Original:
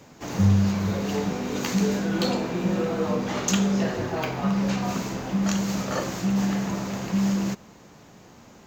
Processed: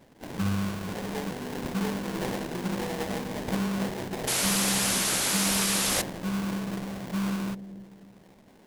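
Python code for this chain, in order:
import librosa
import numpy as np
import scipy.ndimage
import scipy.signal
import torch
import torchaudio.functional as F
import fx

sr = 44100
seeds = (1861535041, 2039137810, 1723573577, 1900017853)

p1 = scipy.signal.sosfilt(scipy.signal.butter(2, 130.0, 'highpass', fs=sr, output='sos'), x)
p2 = fx.sample_hold(p1, sr, seeds[0], rate_hz=1300.0, jitter_pct=20)
p3 = p2 + fx.echo_bbd(p2, sr, ms=295, stages=1024, feedback_pct=36, wet_db=-12.0, dry=0)
p4 = fx.spec_paint(p3, sr, seeds[1], shape='noise', start_s=4.27, length_s=1.75, low_hz=250.0, high_hz=12000.0, level_db=-21.0)
y = p4 * librosa.db_to_amplitude(-6.0)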